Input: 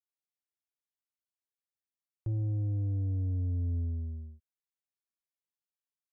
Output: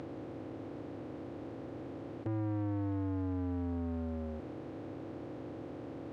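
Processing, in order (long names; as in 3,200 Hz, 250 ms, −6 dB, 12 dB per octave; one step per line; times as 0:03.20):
compressor on every frequency bin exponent 0.2
high-pass filter 270 Hz 12 dB per octave
low-shelf EQ 500 Hz −6.5 dB
leveller curve on the samples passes 2
high-frequency loss of the air 83 metres
level +10 dB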